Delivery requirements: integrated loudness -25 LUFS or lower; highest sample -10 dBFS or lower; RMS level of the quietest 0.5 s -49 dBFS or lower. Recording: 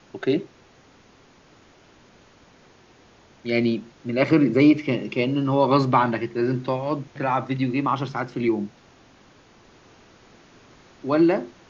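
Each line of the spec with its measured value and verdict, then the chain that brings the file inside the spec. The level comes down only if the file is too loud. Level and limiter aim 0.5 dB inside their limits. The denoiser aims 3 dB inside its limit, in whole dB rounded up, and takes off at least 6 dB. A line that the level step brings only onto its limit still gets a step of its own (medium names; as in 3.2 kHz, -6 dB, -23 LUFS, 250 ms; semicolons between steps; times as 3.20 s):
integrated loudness -22.5 LUFS: fail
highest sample -6.0 dBFS: fail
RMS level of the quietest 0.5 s -54 dBFS: pass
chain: trim -3 dB; peak limiter -10.5 dBFS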